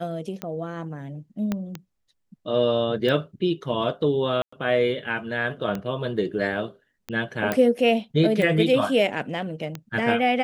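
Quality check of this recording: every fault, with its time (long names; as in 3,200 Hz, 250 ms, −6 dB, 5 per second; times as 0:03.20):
scratch tick 45 rpm −16 dBFS
0:01.52: click −13 dBFS
0:04.42–0:04.53: drop-out 105 ms
0:07.52: click −10 dBFS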